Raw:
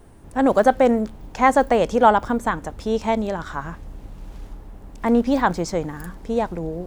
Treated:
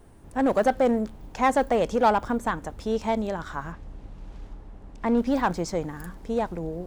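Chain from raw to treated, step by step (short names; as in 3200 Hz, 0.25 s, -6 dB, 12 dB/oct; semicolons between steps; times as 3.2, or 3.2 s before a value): in parallel at -9.5 dB: wavefolder -14.5 dBFS; 3.72–5.17 on the sum: air absorption 58 m; gain -6.5 dB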